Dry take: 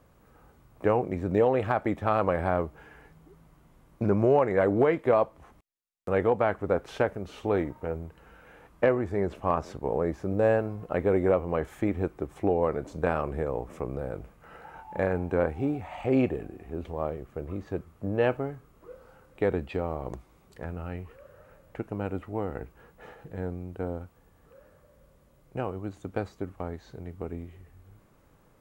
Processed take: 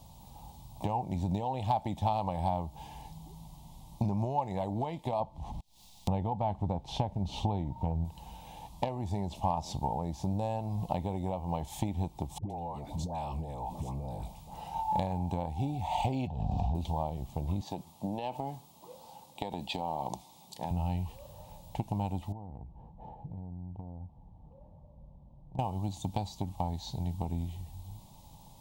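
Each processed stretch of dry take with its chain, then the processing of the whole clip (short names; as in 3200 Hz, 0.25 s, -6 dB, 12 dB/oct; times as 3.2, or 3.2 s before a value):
5.2–8.05 LPF 2600 Hz 6 dB/oct + low shelf 320 Hz +7.5 dB + upward compressor, threshold -39 dBFS
12.38–14.71 dispersion highs, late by 0.119 s, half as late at 780 Hz + compressor, threshold -39 dBFS
16.27–16.75 air absorption 200 m + fixed phaser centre 830 Hz, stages 4 + fast leveller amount 100%
17.61–20.71 HPF 230 Hz + compressor, threshold -28 dBFS
22.32–25.59 Bessel low-pass 540 Hz + compressor 5:1, threshold -45 dBFS
whole clip: high shelf 3200 Hz -8.5 dB; compressor 6:1, threshold -33 dBFS; EQ curve 180 Hz 0 dB, 450 Hz -17 dB, 890 Hz +7 dB, 1400 Hz -28 dB, 3600 Hz +12 dB; gain +8.5 dB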